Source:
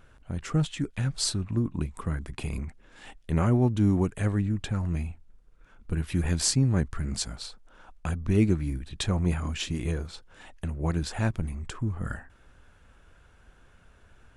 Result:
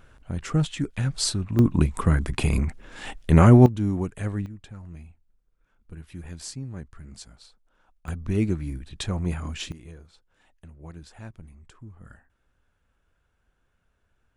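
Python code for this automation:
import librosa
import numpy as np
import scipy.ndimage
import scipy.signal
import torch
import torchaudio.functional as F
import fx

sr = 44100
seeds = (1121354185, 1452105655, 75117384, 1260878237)

y = fx.gain(x, sr, db=fx.steps((0.0, 2.5), (1.59, 10.0), (3.66, -2.5), (4.46, -12.5), (8.08, -1.5), (9.72, -14.5)))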